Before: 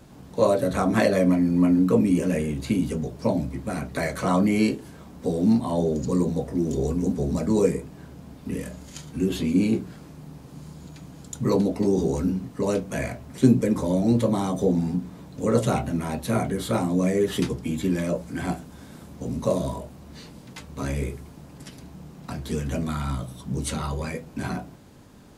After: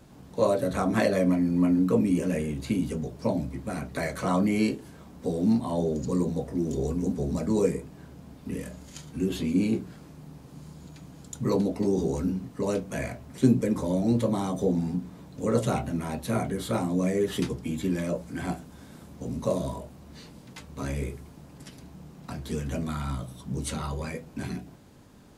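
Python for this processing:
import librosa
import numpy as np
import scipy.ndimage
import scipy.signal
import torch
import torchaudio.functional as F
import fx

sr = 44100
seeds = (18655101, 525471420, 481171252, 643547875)

y = fx.spec_box(x, sr, start_s=24.44, length_s=0.22, low_hz=460.0, high_hz=1600.0, gain_db=-11)
y = y * librosa.db_to_amplitude(-3.5)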